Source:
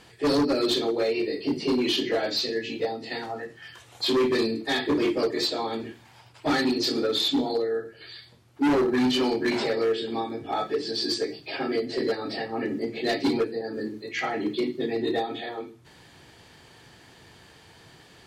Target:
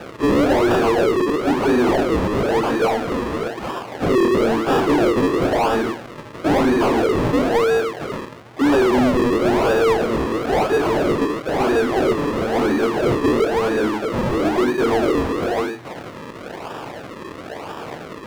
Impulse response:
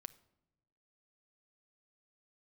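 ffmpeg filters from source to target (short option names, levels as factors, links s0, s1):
-filter_complex "[0:a]acrusher=samples=41:mix=1:aa=0.000001:lfo=1:lforange=41:lforate=1,asplit=2[s0][s1];[s1]highpass=f=720:p=1,volume=22.4,asoftclip=type=tanh:threshold=0.141[s2];[s0][s2]amix=inputs=2:normalize=0,lowpass=f=1800:p=1,volume=0.501,volume=2.11"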